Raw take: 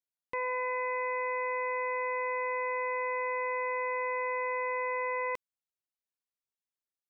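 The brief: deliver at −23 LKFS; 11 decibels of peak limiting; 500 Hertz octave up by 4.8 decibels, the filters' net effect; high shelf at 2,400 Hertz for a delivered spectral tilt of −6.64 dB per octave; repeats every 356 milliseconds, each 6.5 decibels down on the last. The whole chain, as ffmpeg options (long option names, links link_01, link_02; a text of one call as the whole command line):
ffmpeg -i in.wav -af "equalizer=frequency=500:width_type=o:gain=5,highshelf=frequency=2400:gain=-5.5,alimiter=level_in=12.5dB:limit=-24dB:level=0:latency=1,volume=-12.5dB,aecho=1:1:356|712|1068|1424|1780|2136:0.473|0.222|0.105|0.0491|0.0231|0.0109,volume=20dB" out.wav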